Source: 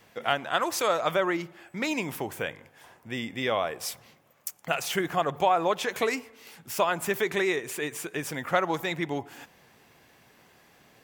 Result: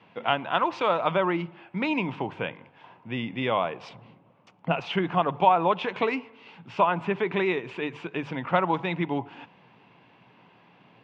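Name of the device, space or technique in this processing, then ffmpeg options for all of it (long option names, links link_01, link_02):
guitar cabinet: -filter_complex "[0:a]highpass=110,equalizer=frequency=120:width_type=q:width=4:gain=8,equalizer=frequency=180:width_type=q:width=4:gain=8,equalizer=frequency=280:width_type=q:width=4:gain=4,equalizer=frequency=950:width_type=q:width=4:gain=8,equalizer=frequency=1800:width_type=q:width=4:gain=-5,equalizer=frequency=2700:width_type=q:width=4:gain=5,lowpass=frequency=3400:width=0.5412,lowpass=frequency=3400:width=1.3066,bandreject=frequency=50:width_type=h:width=6,bandreject=frequency=100:width_type=h:width=6,bandreject=frequency=150:width_type=h:width=6,asettb=1/sr,asplit=3[link_01][link_02][link_03];[link_01]atrim=end=3.894[link_04];[link_02]atrim=start=3.89:end=4.8,asetpts=PTS-STARTPTS,afade=type=in:duration=0.004:curve=qsin,afade=type=out:start_time=0.906:duration=0.004:curve=qsin,tiltshelf=frequency=870:gain=6[link_05];[link_03]atrim=start=4.796[link_06];[link_04][link_05]acrossfade=duration=0.004:curve1=hsin:curve2=qsin[link_07];[link_07][link_06]acrossfade=duration=0.004:curve1=qsin:curve2=hsin,asettb=1/sr,asplit=3[link_08][link_09][link_10];[link_08]atrim=end=6.804[link_11];[link_09]atrim=start=6.8:end=7.36,asetpts=PTS-STARTPTS,afade=type=in:duration=0.004:curve=qsin,afade=type=out:start_time=0.556:duration=0.004:curve=qsin,acrossover=split=3000[link_12][link_13];[link_13]acompressor=threshold=-51dB:ratio=4:attack=1:release=60[link_14];[link_12][link_14]amix=inputs=2:normalize=0[link_15];[link_10]atrim=start=7.356[link_16];[link_11][link_15]acrossfade=duration=0.004:curve1=hsin:curve2=qsin[link_17];[link_17][link_16]acrossfade=duration=0.004:curve1=qsin:curve2=hsin"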